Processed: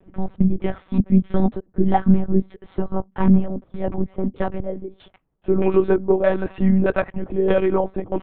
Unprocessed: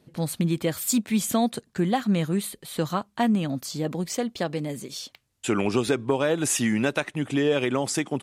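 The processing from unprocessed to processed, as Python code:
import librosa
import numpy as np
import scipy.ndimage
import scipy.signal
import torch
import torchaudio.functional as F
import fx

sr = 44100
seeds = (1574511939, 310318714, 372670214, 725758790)

y = fx.filter_lfo_lowpass(x, sr, shape='saw_down', hz=1.6, low_hz=410.0, high_hz=1800.0, q=0.84)
y = y + 0.96 * np.pad(y, (int(5.0 * sr / 1000.0), 0))[:len(y)]
y = fx.lpc_monotone(y, sr, seeds[0], pitch_hz=190.0, order=10)
y = y * librosa.db_to_amplitude(3.5)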